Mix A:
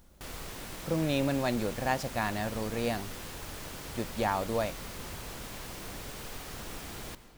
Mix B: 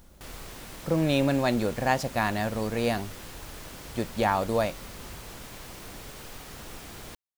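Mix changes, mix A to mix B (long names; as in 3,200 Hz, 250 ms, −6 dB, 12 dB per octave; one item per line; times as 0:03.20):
speech +5.0 dB
reverb: off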